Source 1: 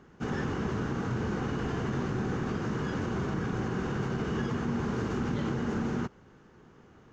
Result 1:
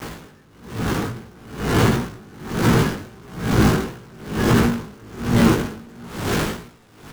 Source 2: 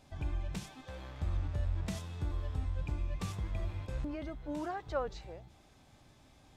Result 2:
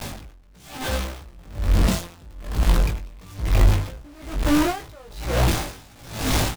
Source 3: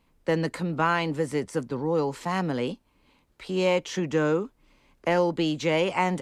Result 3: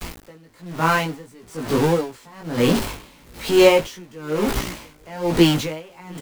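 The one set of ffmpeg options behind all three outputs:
-filter_complex "[0:a]aeval=exprs='val(0)+0.5*0.0531*sgn(val(0))':c=same,lowshelf=f=120:g=2.5,bandreject=f=395.2:t=h:w=4,bandreject=f=790.4:t=h:w=4,bandreject=f=1185.6:t=h:w=4,bandreject=f=1580.8:t=h:w=4,bandreject=f=1976:t=h:w=4,bandreject=f=2371.2:t=h:w=4,bandreject=f=2766.4:t=h:w=4,bandreject=f=3161.6:t=h:w=4,bandreject=f=3556.8:t=h:w=4,bandreject=f=3952:t=h:w=4,bandreject=f=4347.2:t=h:w=4,bandreject=f=4742.4:t=h:w=4,bandreject=f=5137.6:t=h:w=4,bandreject=f=5532.8:t=h:w=4,bandreject=f=5928:t=h:w=4,bandreject=f=6323.2:t=h:w=4,bandreject=f=6718.4:t=h:w=4,bandreject=f=7113.6:t=h:w=4,bandreject=f=7508.8:t=h:w=4,bandreject=f=7904:t=h:w=4,bandreject=f=8299.2:t=h:w=4,bandreject=f=8694.4:t=h:w=4,bandreject=f=9089.6:t=h:w=4,bandreject=f=9484.8:t=h:w=4,bandreject=f=9880:t=h:w=4,bandreject=f=10275.2:t=h:w=4,bandreject=f=10670.4:t=h:w=4,bandreject=f=11065.6:t=h:w=4,bandreject=f=11460.8:t=h:w=4,bandreject=f=11856:t=h:w=4,dynaudnorm=f=720:g=3:m=3.55,flanger=delay=17:depth=2.4:speed=1.5,aeval=exprs='val(0)*gte(abs(val(0)),0.02)':c=same,asplit=2[s0][s1];[s1]aecho=0:1:688:0.141[s2];[s0][s2]amix=inputs=2:normalize=0,aeval=exprs='val(0)*pow(10,-29*(0.5-0.5*cos(2*PI*1.1*n/s))/20)':c=same,volume=1.5"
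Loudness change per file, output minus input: +11.5 LU, +15.0 LU, +7.0 LU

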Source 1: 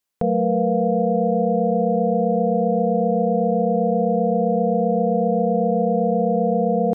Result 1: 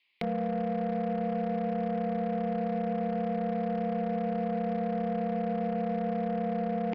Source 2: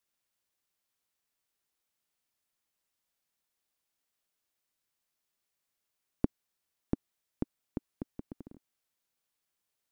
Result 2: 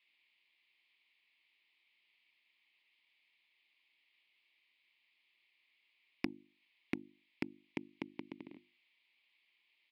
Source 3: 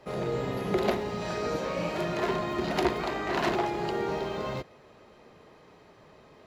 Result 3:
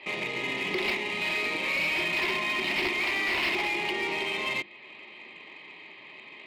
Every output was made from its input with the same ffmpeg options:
-af "bandreject=f=50:t=h:w=6,bandreject=f=100:t=h:w=6,bandreject=f=150:t=h:w=6,bandreject=f=200:t=h:w=6,bandreject=f=250:t=h:w=6,bandreject=f=300:t=h:w=6,bandreject=f=350:t=h:w=6,acompressor=threshold=0.00501:ratio=1.5,highpass=260,equalizer=f=340:t=q:w=4:g=4,equalizer=f=480:t=q:w=4:g=-10,equalizer=f=680:t=q:w=4:g=-5,equalizer=f=1000:t=q:w=4:g=4,equalizer=f=1500:t=q:w=4:g=-9,equalizer=f=2200:t=q:w=4:g=7,lowpass=f=2700:w=0.5412,lowpass=f=2700:w=1.3066,aexciter=amount=8.2:drive=6.3:freq=2100,aresample=11025,volume=37.6,asoftclip=hard,volume=0.0266,aresample=44100,aeval=exprs='0.0447*(cos(1*acos(clip(val(0)/0.0447,-1,1)))-cos(1*PI/2))+0.00141*(cos(3*acos(clip(val(0)/0.0447,-1,1)))-cos(3*PI/2))+0.00178*(cos(7*acos(clip(val(0)/0.0447,-1,1)))-cos(7*PI/2))':c=same,volume=2.24"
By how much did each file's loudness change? -11.5 LU, -5.5 LU, +3.0 LU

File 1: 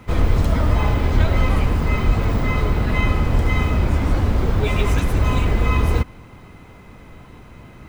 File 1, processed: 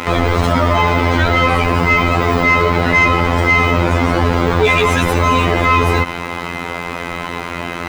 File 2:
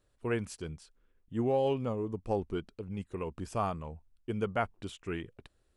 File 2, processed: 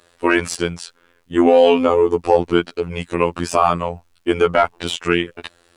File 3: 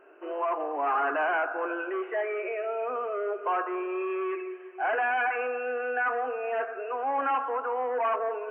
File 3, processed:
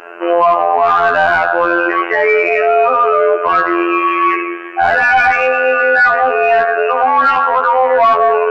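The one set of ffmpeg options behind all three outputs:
-filter_complex "[0:a]highshelf=f=2600:g=11,afftfilt=real='hypot(re,im)*cos(PI*b)':imag='0':win_size=2048:overlap=0.75,asplit=2[s0][s1];[s1]highpass=f=720:p=1,volume=15.8,asoftclip=type=tanh:threshold=0.891[s2];[s0][s2]amix=inputs=2:normalize=0,lowpass=f=1500:p=1,volume=0.501,alimiter=level_in=3.98:limit=0.891:release=50:level=0:latency=1,volume=0.891"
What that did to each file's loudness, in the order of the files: +6.0 LU, +17.5 LU, +18.0 LU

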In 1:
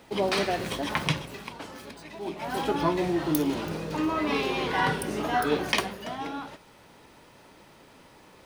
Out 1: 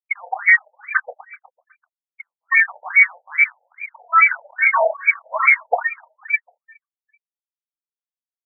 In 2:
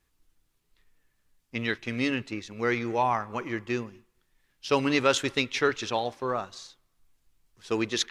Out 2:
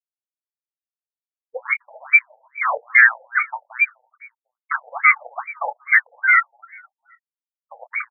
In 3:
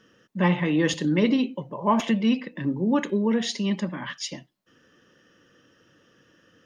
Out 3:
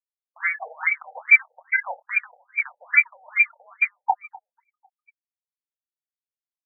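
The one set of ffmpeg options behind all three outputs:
-filter_complex "[0:a]afftfilt=real='re*gte(hypot(re,im),0.141)':imag='im*gte(hypot(re,im),0.141)':win_size=1024:overlap=0.75,agate=range=0.0224:threshold=0.00447:ratio=3:detection=peak,equalizer=f=210:w=1.3:g=13.5,acompressor=threshold=0.112:ratio=16,crystalizer=i=4:c=0,aeval=exprs='clip(val(0),-1,0.0891)':c=same,crystalizer=i=3.5:c=0,lowpass=f=2200:t=q:w=0.5098,lowpass=f=2200:t=q:w=0.6013,lowpass=f=2200:t=q:w=0.9,lowpass=f=2200:t=q:w=2.563,afreqshift=-2600,aeval=exprs='0.282*(cos(1*acos(clip(val(0)/0.282,-1,1)))-cos(1*PI/2))+0.141*(cos(5*acos(clip(val(0)/0.282,-1,1)))-cos(5*PI/2))':c=same,asplit=2[s0][s1];[s1]adelay=25,volume=0.282[s2];[s0][s2]amix=inputs=2:normalize=0,asplit=2[s3][s4];[s4]aecho=0:1:250|500|750:0.0891|0.0365|0.015[s5];[s3][s5]amix=inputs=2:normalize=0,afftfilt=real='re*between(b*sr/1024,610*pow(1700/610,0.5+0.5*sin(2*PI*2.4*pts/sr))/1.41,610*pow(1700/610,0.5+0.5*sin(2*PI*2.4*pts/sr))*1.41)':imag='im*between(b*sr/1024,610*pow(1700/610,0.5+0.5*sin(2*PI*2.4*pts/sr))/1.41,610*pow(1700/610,0.5+0.5*sin(2*PI*2.4*pts/sr))*1.41)':win_size=1024:overlap=0.75,volume=2.11"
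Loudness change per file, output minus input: +11.5 LU, +11.0 LU, +3.0 LU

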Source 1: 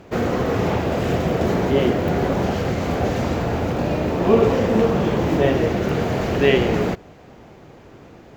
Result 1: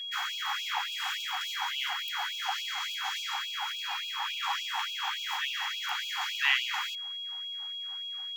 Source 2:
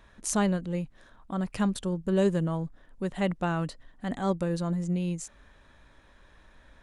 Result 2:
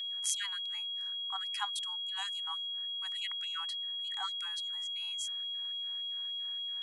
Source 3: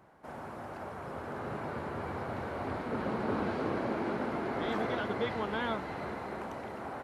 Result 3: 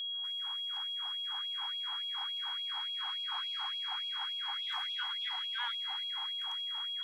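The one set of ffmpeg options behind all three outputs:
-af "aeval=exprs='val(0)+0.02*sin(2*PI*3300*n/s)':c=same,afftfilt=real='re*gte(b*sr/1024,730*pow(2400/730,0.5+0.5*sin(2*PI*3.5*pts/sr)))':imag='im*gte(b*sr/1024,730*pow(2400/730,0.5+0.5*sin(2*PI*3.5*pts/sr)))':win_size=1024:overlap=0.75,volume=0.841"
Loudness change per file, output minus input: -11.5 LU, -5.0 LU, +1.0 LU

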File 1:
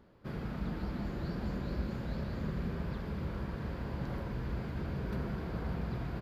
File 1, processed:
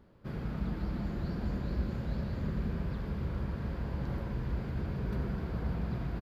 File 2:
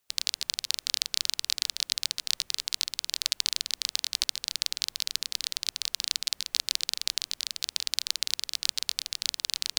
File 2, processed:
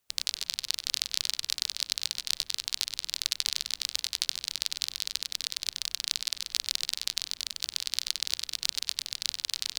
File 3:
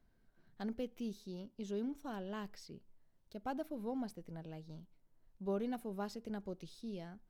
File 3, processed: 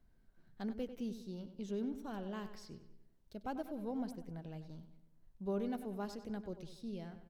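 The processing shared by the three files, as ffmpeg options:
-filter_complex "[0:a]lowshelf=f=170:g=5.5,asplit=2[s0][s1];[s1]adelay=96,lowpass=f=4900:p=1,volume=0.282,asplit=2[s2][s3];[s3]adelay=96,lowpass=f=4900:p=1,volume=0.5,asplit=2[s4][s5];[s5]adelay=96,lowpass=f=4900:p=1,volume=0.5,asplit=2[s6][s7];[s7]adelay=96,lowpass=f=4900:p=1,volume=0.5,asplit=2[s8][s9];[s9]adelay=96,lowpass=f=4900:p=1,volume=0.5[s10];[s2][s4][s6][s8][s10]amix=inputs=5:normalize=0[s11];[s0][s11]amix=inputs=2:normalize=0,volume=0.841"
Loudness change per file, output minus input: +2.0 LU, -1.5 LU, +0.5 LU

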